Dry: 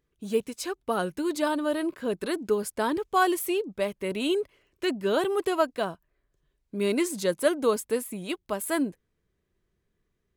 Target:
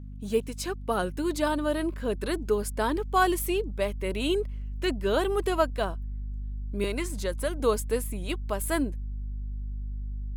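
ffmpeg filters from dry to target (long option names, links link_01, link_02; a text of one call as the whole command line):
ffmpeg -i in.wav -filter_complex "[0:a]asettb=1/sr,asplit=3[link_01][link_02][link_03];[link_01]atrim=end=6.844[link_04];[link_02]atrim=start=6.84:end=7.6,asetpts=PTS-STARTPTS,afade=type=in:duration=0.004:curve=qsin,afade=type=out:start_time=0.756:duration=0.004:curve=qsin,acrossover=split=580|2300[link_05][link_06][link_07];[link_05]acompressor=threshold=-33dB:ratio=4[link_08];[link_06]acompressor=threshold=-32dB:ratio=4[link_09];[link_07]acompressor=threshold=-39dB:ratio=4[link_10];[link_08][link_09][link_10]amix=inputs=3:normalize=0[link_11];[link_03]atrim=start=7.596[link_12];[link_04][link_11]acrossfade=duration=0.004:curve1=hsin:curve2=qsin[link_13];[link_13][link_12]acrossfade=duration=0.004:curve1=qsin:curve2=hsin,aeval=exprs='val(0)+0.0112*(sin(2*PI*50*n/s)+sin(2*PI*2*50*n/s)/2+sin(2*PI*3*50*n/s)/3+sin(2*PI*4*50*n/s)/4+sin(2*PI*5*50*n/s)/5)':channel_layout=same,asubboost=boost=4:cutoff=66" out.wav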